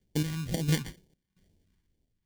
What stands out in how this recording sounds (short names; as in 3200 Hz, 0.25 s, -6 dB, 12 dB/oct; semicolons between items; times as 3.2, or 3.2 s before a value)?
random-step tremolo 4.4 Hz, depth 85%; aliases and images of a low sample rate 1300 Hz, jitter 0%; phasing stages 2, 2.1 Hz, lowest notch 570–1200 Hz